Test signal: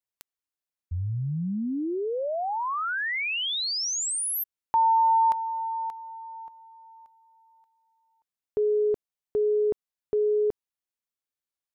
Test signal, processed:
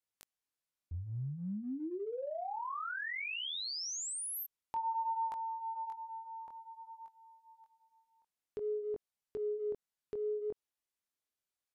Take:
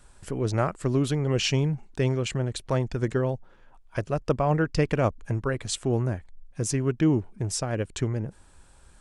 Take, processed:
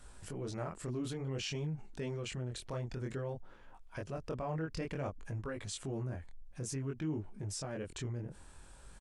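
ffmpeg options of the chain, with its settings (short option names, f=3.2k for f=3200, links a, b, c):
-af "flanger=delay=19:depth=6.2:speed=0.55,acompressor=threshold=-48dB:ratio=2:attack=0.52:release=71:knee=1:detection=peak,aresample=32000,aresample=44100,volume=2.5dB"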